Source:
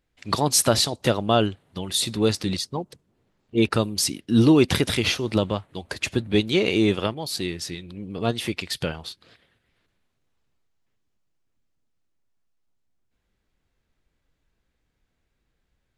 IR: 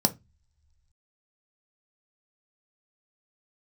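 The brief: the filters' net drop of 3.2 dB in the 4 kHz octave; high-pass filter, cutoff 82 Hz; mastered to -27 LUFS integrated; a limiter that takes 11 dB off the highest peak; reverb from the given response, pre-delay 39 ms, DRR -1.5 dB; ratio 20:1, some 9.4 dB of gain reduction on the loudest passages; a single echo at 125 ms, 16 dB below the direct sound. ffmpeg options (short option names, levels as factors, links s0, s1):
-filter_complex "[0:a]highpass=82,equalizer=f=4000:t=o:g=-4,acompressor=threshold=0.0891:ratio=20,alimiter=limit=0.106:level=0:latency=1,aecho=1:1:125:0.158,asplit=2[s0][s1];[1:a]atrim=start_sample=2205,adelay=39[s2];[s1][s2]afir=irnorm=-1:irlink=0,volume=0.376[s3];[s0][s3]amix=inputs=2:normalize=0,volume=0.596"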